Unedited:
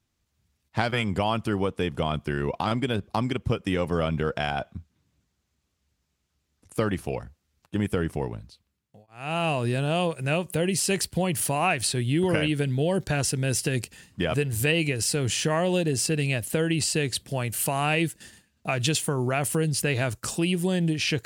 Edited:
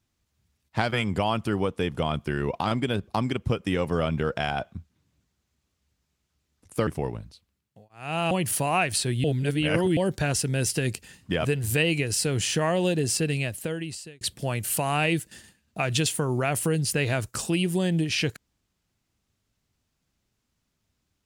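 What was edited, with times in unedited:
6.87–8.05 s: delete
9.49–11.20 s: delete
12.13–12.86 s: reverse
16.10–17.10 s: fade out

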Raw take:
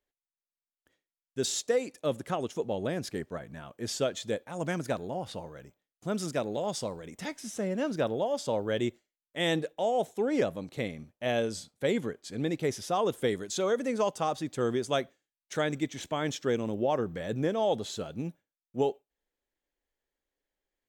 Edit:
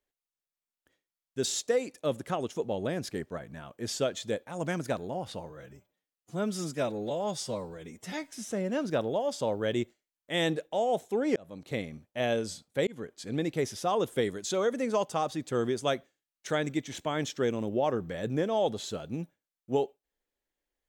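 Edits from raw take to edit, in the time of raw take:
5.50–7.38 s: stretch 1.5×
10.42–10.78 s: fade in
11.93–12.31 s: fade in equal-power

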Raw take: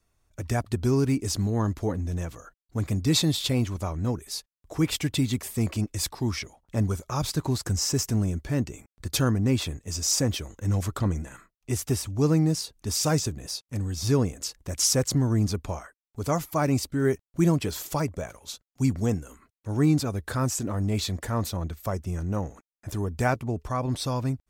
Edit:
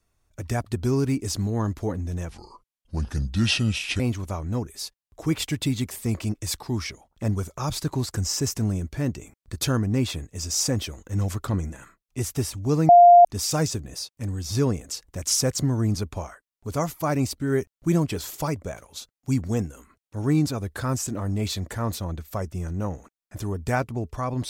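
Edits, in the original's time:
2.29–3.52 s: speed 72%
12.41–12.77 s: bleep 700 Hz -7.5 dBFS

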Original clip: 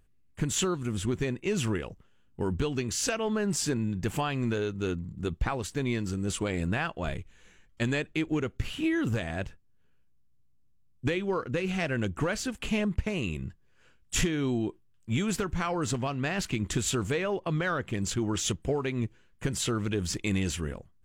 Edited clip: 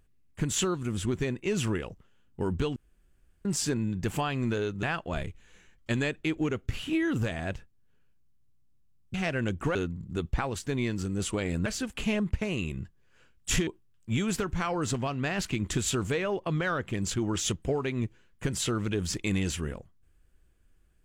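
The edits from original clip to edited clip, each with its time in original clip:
2.76–3.45 s: room tone
4.83–6.74 s: move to 12.31 s
11.05–11.70 s: delete
14.32–14.67 s: delete

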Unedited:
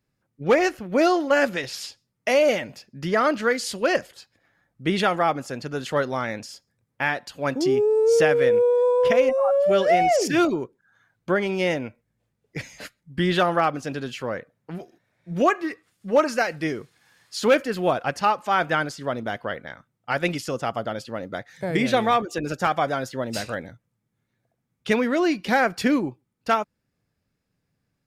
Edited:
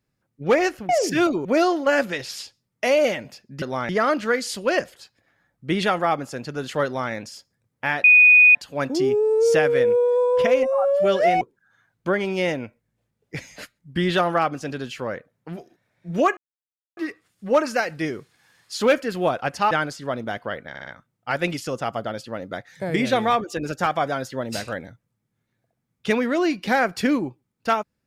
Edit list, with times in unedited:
6.02–6.29 s: copy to 3.06 s
7.21 s: add tone 2.48 kHz -8.5 dBFS 0.51 s
10.07–10.63 s: move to 0.89 s
15.59 s: insert silence 0.60 s
18.33–18.70 s: delete
19.68 s: stutter 0.06 s, 4 plays

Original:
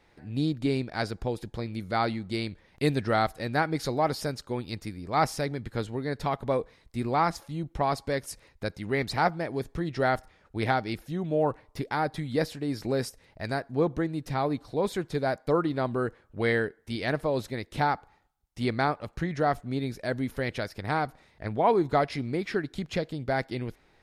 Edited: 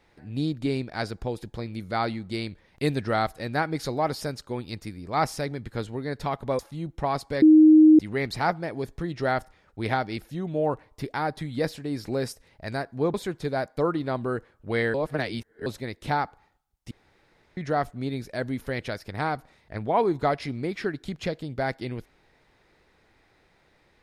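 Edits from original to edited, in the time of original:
6.59–7.36 s: delete
8.19–8.76 s: bleep 311 Hz -10 dBFS
13.91–14.84 s: delete
16.64–17.36 s: reverse
18.61–19.27 s: room tone

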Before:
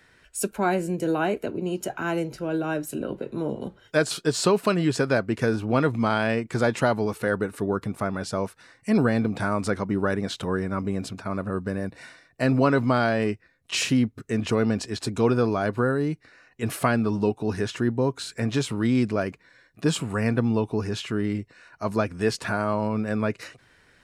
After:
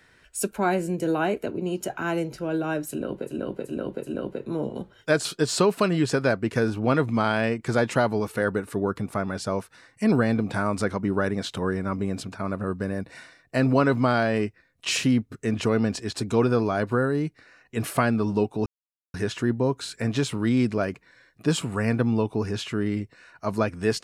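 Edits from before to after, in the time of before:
2.93–3.31 s: loop, 4 plays, crossfade 0.10 s
17.52 s: insert silence 0.48 s

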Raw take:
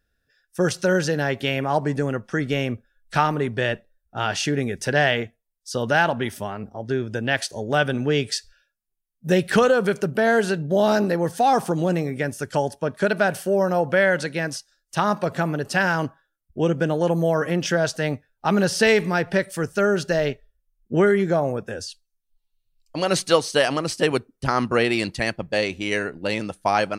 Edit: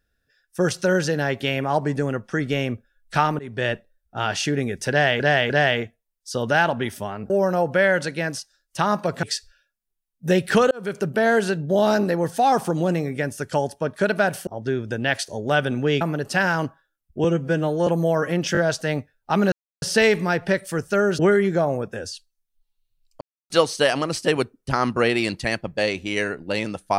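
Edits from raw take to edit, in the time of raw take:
3.39–3.66 s: fade in, from -20.5 dB
4.90–5.20 s: loop, 3 plays
6.70–8.24 s: swap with 13.48–15.41 s
9.72–10.07 s: fade in
16.64–17.06 s: stretch 1.5×
17.72 s: stutter 0.02 s, 3 plays
18.67 s: insert silence 0.30 s
20.04–20.94 s: delete
22.96–23.25 s: mute

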